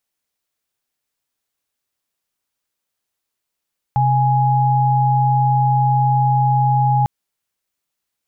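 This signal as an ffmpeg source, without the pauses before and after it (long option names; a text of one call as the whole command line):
ffmpeg -f lavfi -i "aevalsrc='0.178*(sin(2*PI*130.81*t)+sin(2*PI*830.61*t))':duration=3.1:sample_rate=44100" out.wav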